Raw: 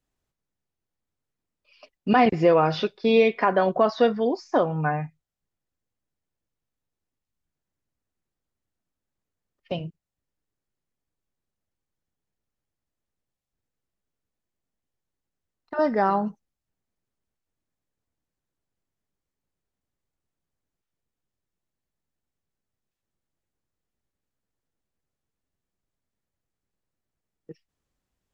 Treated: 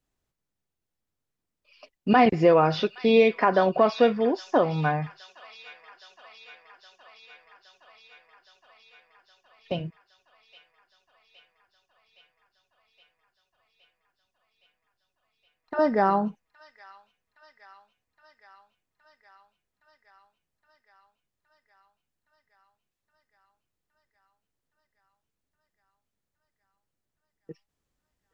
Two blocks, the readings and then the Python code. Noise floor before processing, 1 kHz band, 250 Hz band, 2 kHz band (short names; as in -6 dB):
under -85 dBFS, 0.0 dB, 0.0 dB, 0.0 dB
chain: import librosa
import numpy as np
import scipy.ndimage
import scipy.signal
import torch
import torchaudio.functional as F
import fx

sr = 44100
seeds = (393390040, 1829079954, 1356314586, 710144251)

y = fx.echo_wet_highpass(x, sr, ms=817, feedback_pct=75, hz=2300.0, wet_db=-12)